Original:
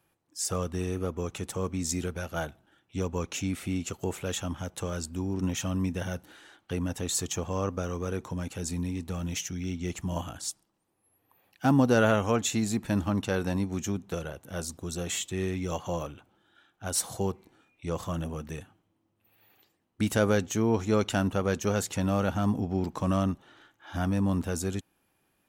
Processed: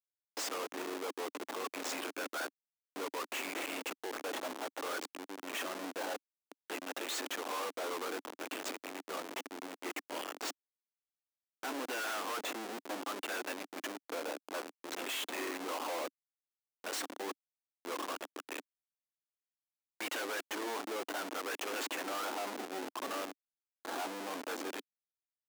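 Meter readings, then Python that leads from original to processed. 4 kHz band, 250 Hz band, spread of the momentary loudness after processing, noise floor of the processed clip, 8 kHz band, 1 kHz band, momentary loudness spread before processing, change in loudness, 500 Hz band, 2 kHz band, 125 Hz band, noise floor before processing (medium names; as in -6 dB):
-2.5 dB, -16.0 dB, 7 LU, under -85 dBFS, -9.5 dB, -4.0 dB, 11 LU, -9.5 dB, -9.5 dB, -2.5 dB, under -35 dB, -74 dBFS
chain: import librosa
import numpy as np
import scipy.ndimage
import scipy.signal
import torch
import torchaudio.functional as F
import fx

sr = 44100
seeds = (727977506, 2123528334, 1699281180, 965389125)

y = fx.filter_lfo_bandpass(x, sr, shape='sine', hz=0.61, low_hz=880.0, high_hz=2700.0, q=1.7)
y = fx.schmitt(y, sr, flips_db=-46.5)
y = scipy.signal.sosfilt(scipy.signal.cheby1(4, 1.0, 280.0, 'highpass', fs=sr, output='sos'), y)
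y = y * 10.0 ** (7.5 / 20.0)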